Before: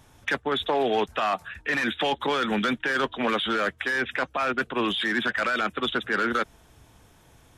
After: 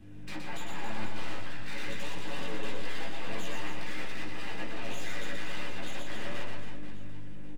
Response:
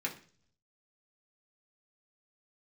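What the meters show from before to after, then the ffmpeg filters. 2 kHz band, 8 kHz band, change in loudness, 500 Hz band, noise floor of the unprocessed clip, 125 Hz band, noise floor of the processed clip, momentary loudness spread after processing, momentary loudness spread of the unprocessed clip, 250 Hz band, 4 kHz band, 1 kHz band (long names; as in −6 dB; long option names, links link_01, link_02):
−14.0 dB, −1.0 dB, −14.0 dB, −15.0 dB, −57 dBFS, −1.0 dB, −32 dBFS, 6 LU, 4 LU, −12.5 dB, −12.5 dB, −16.0 dB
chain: -filter_complex "[0:a]equalizer=frequency=1100:width_type=o:width=0.36:gain=-14.5,bandreject=frequency=830:width=5.3,aeval=exprs='val(0)+0.00708*(sin(2*PI*50*n/s)+sin(2*PI*2*50*n/s)/2+sin(2*PI*3*50*n/s)/3+sin(2*PI*4*50*n/s)/4+sin(2*PI*5*50*n/s)/5)':channel_layout=same,acrossover=split=450|2500[link_01][link_02][link_03];[link_02]acompressor=threshold=-37dB:ratio=6[link_04];[link_01][link_04][link_03]amix=inputs=3:normalize=0,flanger=delay=16:depth=3:speed=1.4,asoftclip=type=tanh:threshold=-32.5dB,highshelf=frequency=3800:gain=-12,aeval=exprs='abs(val(0))':channel_layout=same,aecho=1:1:120|276|478.8|742.4|1085:0.631|0.398|0.251|0.158|0.1[link_05];[1:a]atrim=start_sample=2205,afade=type=out:start_time=0.39:duration=0.01,atrim=end_sample=17640,asetrate=48510,aresample=44100[link_06];[link_05][link_06]afir=irnorm=-1:irlink=0,volume=1.5dB"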